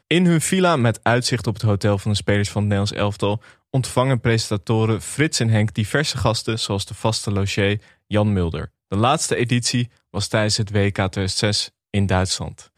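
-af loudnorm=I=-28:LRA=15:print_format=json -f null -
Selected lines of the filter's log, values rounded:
"input_i" : "-20.5",
"input_tp" : "-2.6",
"input_lra" : "1.3",
"input_thresh" : "-30.6",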